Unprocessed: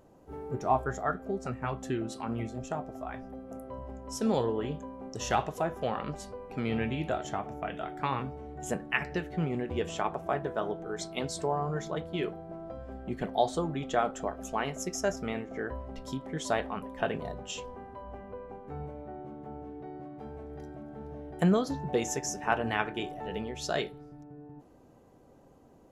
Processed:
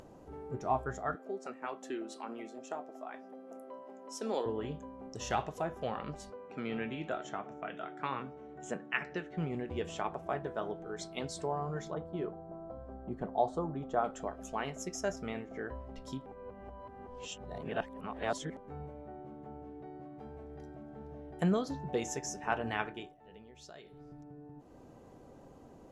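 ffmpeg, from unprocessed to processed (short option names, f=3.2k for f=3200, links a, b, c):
-filter_complex "[0:a]asettb=1/sr,asplit=3[a][b][c];[a]atrim=end=1.154[d];[b]atrim=start=1.15:end=4.46,asetpts=PTS-STARTPTS,afade=t=in:d=0.004:c=qsin,afade=t=out:st=3.306:d=0.004:c=qsin,highpass=f=270:w=0.5412,highpass=f=270:w=1.3066[e];[c]atrim=start=4.456[f];[d][e]acrossfade=d=0.004:c1=hsin:c2=qsin[g];[g][f]acrossfade=d=0.004:c1=qsin:c2=hsin,asettb=1/sr,asplit=3[h][i][j];[h]atrim=end=6.304[k];[i]atrim=start=6.3:end=9.37,asetpts=PTS-STARTPTS,afade=t=in:d=0.004:c=qsin,afade=t=out:st=3.066:d=0.004:c=qsin,highpass=180,equalizer=f=800:t=q:w=4:g=-3,equalizer=f=1.4k:t=q:w=4:g=4,equalizer=f=4.7k:t=q:w=4:g=-6,lowpass=f=7.5k:w=0.5412,lowpass=f=7.5k:w=1.3066[l];[j]atrim=start=9.366[m];[k][l]acrossfade=d=0.004:c1=hsin:c2=qsin[n];[n][m]acrossfade=d=0.004:c1=qsin:c2=hsin,asettb=1/sr,asplit=3[o][p][q];[o]atrim=end=11.944[r];[p]atrim=start=11.94:end=14.04,asetpts=PTS-STARTPTS,afade=t=in:d=0.004:c=qsin,afade=t=out:st=2.096:d=0.004:c=qsin,highshelf=f=1.6k:t=q:w=1.5:g=-11[s];[q]atrim=start=14.036[t];[r][s]acrossfade=d=0.004:c1=hsin:c2=qsin[u];[u][t]acrossfade=d=0.004:c1=qsin:c2=hsin,asplit=5[v][w][x][y][z];[v]atrim=end=16.262[aa];[w]atrim=start=16.258:end=18.572,asetpts=PTS-STARTPTS,areverse[ab];[x]atrim=start=18.568:end=23.17,asetpts=PTS-STARTPTS,afade=t=out:st=4.272:d=0.33:silence=0.112202[ac];[y]atrim=start=23.17:end=23.83,asetpts=PTS-STARTPTS,volume=-19dB[ad];[z]atrim=start=23.83,asetpts=PTS-STARTPTS,afade=t=in:d=0.33:silence=0.112202[ae];[aa][ab]acrossfade=d=0.004:c1=hsin:c2=hsin[af];[ac][ad][ae]concat=n=3:v=0:a=1[ag];[af][ag]acrossfade=d=0.004:c1=hsin:c2=hsin,lowpass=10k,acompressor=mode=upward:threshold=-40dB:ratio=2.5,volume=-5dB"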